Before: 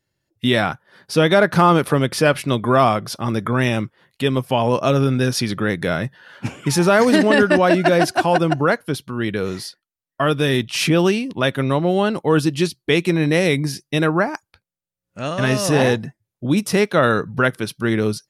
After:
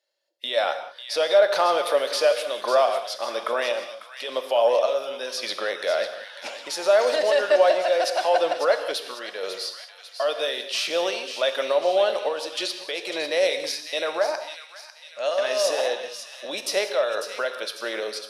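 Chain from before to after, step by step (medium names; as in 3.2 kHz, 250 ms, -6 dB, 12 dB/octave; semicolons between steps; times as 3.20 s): peaking EQ 4.1 kHz +11 dB 1.3 oct; peak limiter -9.5 dBFS, peak gain reduction 10 dB; random-step tremolo; ladder high-pass 530 Hz, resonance 70%; feedback echo behind a high-pass 547 ms, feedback 49%, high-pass 1.8 kHz, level -9 dB; gated-style reverb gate 220 ms flat, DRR 8 dB; trim +6 dB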